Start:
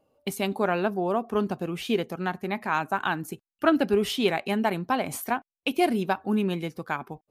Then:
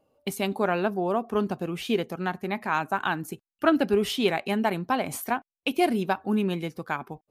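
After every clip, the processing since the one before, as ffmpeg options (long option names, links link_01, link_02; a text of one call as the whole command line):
ffmpeg -i in.wav -af anull out.wav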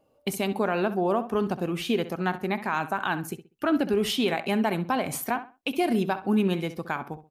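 ffmpeg -i in.wav -filter_complex "[0:a]alimiter=limit=-17.5dB:level=0:latency=1:release=83,asplit=2[link_01][link_02];[link_02]adelay=65,lowpass=frequency=3700:poles=1,volume=-12.5dB,asplit=2[link_03][link_04];[link_04]adelay=65,lowpass=frequency=3700:poles=1,volume=0.27,asplit=2[link_05][link_06];[link_06]adelay=65,lowpass=frequency=3700:poles=1,volume=0.27[link_07];[link_01][link_03][link_05][link_07]amix=inputs=4:normalize=0,volume=2dB" out.wav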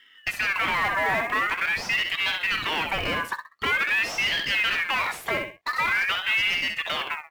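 ffmpeg -i in.wav -filter_complex "[0:a]asplit=2[link_01][link_02];[link_02]highpass=frequency=720:poles=1,volume=27dB,asoftclip=type=tanh:threshold=-13.5dB[link_03];[link_01][link_03]amix=inputs=2:normalize=0,lowpass=frequency=1000:poles=1,volume=-6dB,acrusher=bits=6:mode=log:mix=0:aa=0.000001,aeval=exprs='val(0)*sin(2*PI*1900*n/s+1900*0.3/0.46*sin(2*PI*0.46*n/s))':channel_layout=same" out.wav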